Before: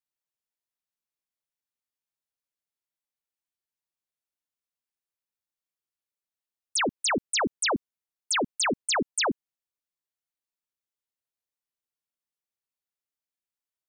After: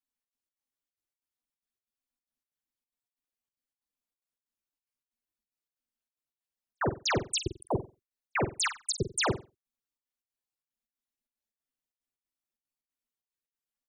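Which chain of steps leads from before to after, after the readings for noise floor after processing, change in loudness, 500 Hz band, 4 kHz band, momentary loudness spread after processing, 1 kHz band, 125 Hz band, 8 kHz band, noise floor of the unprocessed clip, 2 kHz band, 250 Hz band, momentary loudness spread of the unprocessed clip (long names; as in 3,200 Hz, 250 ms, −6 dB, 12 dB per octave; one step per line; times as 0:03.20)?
below −85 dBFS, −4.5 dB, −2.5 dB, −5.5 dB, 6 LU, −4.5 dB, +9.5 dB, −5.5 dB, below −85 dBFS, −5.5 dB, −5.0 dB, 4 LU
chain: expanding power law on the bin magnitudes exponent 2.2
parametric band 120 Hz +14.5 dB 1.1 octaves
gate pattern "xxx.xx.x" 185 BPM −60 dB
ring modulation 130 Hz
on a send: flutter between parallel walls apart 7.9 metres, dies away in 0.27 s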